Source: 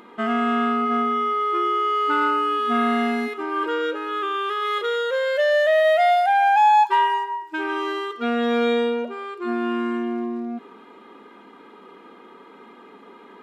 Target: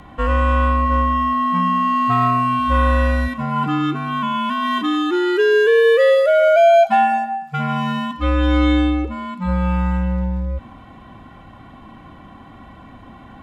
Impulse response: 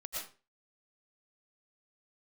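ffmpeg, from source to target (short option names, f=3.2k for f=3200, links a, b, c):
-af "lowshelf=f=260:g=6.5,afreqshift=-170,volume=3.5dB"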